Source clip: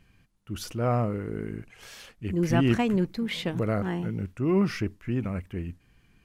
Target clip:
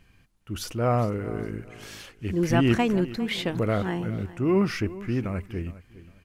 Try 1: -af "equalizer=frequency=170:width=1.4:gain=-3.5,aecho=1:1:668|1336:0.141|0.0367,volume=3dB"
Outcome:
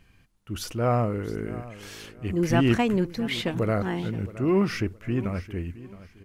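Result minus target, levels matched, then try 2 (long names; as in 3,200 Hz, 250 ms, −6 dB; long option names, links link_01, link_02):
echo 259 ms late
-af "equalizer=frequency=170:width=1.4:gain=-3.5,aecho=1:1:409|818:0.141|0.0367,volume=3dB"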